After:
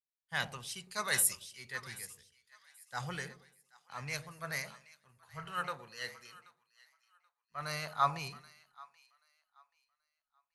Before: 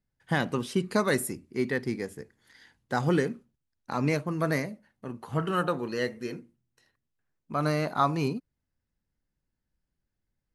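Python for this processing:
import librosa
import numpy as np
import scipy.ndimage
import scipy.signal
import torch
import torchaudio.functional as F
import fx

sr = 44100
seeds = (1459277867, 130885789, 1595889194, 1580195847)

y = fx.tone_stack(x, sr, knobs='10-0-10')
y = fx.echo_split(y, sr, split_hz=770.0, low_ms=111, high_ms=781, feedback_pct=52, wet_db=-11)
y = fx.transient(y, sr, attack_db=-2, sustain_db=2)
y = fx.band_widen(y, sr, depth_pct=100)
y = y * librosa.db_to_amplitude(-1.5)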